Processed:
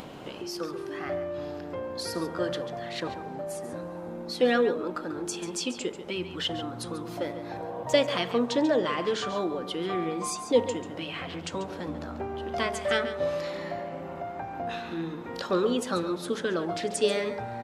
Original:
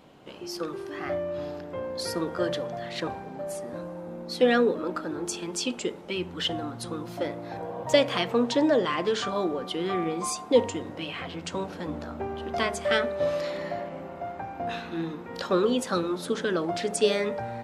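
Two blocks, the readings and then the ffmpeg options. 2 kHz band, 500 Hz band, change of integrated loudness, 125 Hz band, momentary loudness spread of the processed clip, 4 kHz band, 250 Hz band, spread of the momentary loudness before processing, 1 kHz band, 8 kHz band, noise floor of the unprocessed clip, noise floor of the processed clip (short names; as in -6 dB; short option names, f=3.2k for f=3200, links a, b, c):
-1.5 dB, -1.5 dB, -1.5 dB, -1.5 dB, 11 LU, -1.5 dB, -1.5 dB, 12 LU, -1.5 dB, -1.5 dB, -41 dBFS, -40 dBFS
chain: -af "aecho=1:1:140:0.251,acompressor=mode=upward:threshold=-29dB:ratio=2.5,volume=-2dB"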